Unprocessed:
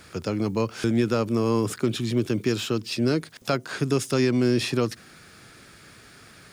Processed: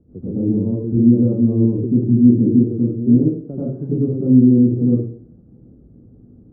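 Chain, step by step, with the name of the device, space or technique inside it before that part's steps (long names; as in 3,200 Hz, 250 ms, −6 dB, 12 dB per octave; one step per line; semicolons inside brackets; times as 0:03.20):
next room (low-pass filter 400 Hz 24 dB per octave; convolution reverb RT60 0.50 s, pre-delay 80 ms, DRR −10 dB)
0:02.02–0:02.64: dynamic equaliser 210 Hz, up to +4 dB, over −21 dBFS, Q 1.2
level −1.5 dB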